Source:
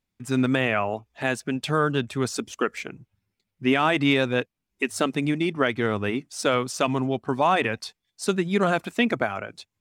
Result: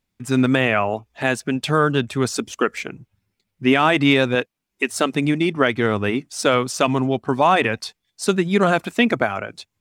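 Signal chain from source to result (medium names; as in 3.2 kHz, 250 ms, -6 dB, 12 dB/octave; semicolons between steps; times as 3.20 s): 4.35–5.12 s: bass shelf 160 Hz -10.5 dB; trim +5 dB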